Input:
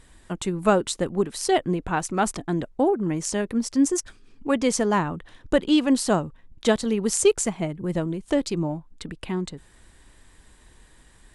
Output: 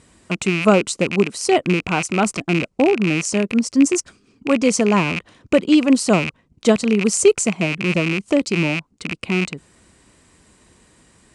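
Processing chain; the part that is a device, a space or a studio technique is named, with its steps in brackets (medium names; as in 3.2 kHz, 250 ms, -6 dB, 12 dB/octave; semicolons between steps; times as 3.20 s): car door speaker with a rattle (rattle on loud lows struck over -36 dBFS, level -15 dBFS; cabinet simulation 98–9400 Hz, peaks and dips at 200 Hz +3 dB, 860 Hz -5 dB, 1.7 kHz -8 dB, 3.5 kHz -7 dB); trim +5.5 dB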